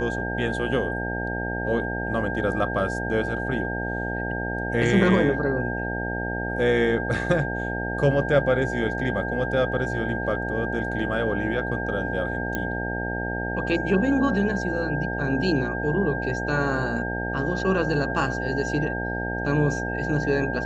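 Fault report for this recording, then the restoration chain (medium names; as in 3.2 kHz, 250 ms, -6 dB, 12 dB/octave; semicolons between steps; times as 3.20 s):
buzz 60 Hz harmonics 15 -30 dBFS
whine 1.6 kHz -30 dBFS
12.55 s: pop -13 dBFS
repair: de-click; de-hum 60 Hz, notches 15; band-stop 1.6 kHz, Q 30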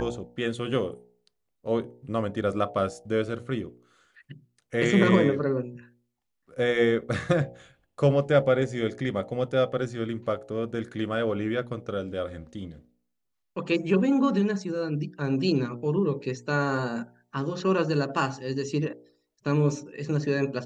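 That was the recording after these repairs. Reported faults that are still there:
nothing left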